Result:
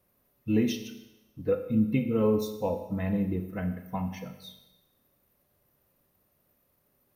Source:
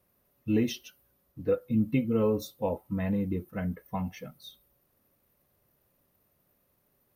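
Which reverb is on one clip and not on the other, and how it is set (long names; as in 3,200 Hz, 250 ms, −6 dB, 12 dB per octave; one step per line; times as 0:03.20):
four-comb reverb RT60 1 s, combs from 29 ms, DRR 8 dB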